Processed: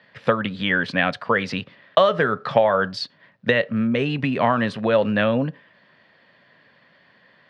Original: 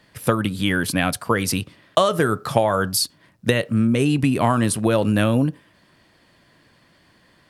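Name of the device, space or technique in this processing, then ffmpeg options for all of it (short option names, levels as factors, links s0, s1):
kitchen radio: -af "highpass=170,equalizer=f=320:t=q:w=4:g=-10,equalizer=f=550:t=q:w=4:g=4,equalizer=f=1800:t=q:w=4:g=6,lowpass=f=4000:w=0.5412,lowpass=f=4000:w=1.3066"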